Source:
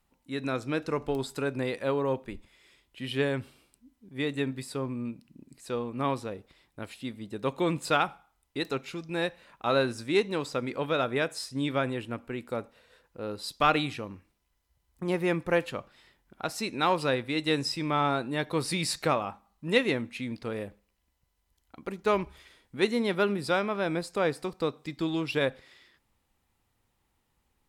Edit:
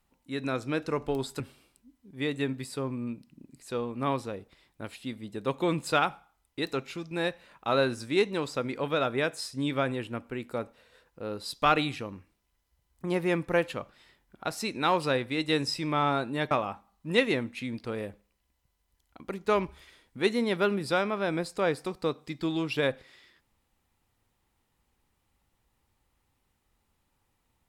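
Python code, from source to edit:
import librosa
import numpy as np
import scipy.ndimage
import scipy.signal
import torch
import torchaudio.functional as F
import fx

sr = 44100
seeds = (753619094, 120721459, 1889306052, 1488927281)

y = fx.edit(x, sr, fx.cut(start_s=1.4, length_s=1.98),
    fx.cut(start_s=18.49, length_s=0.6), tone=tone)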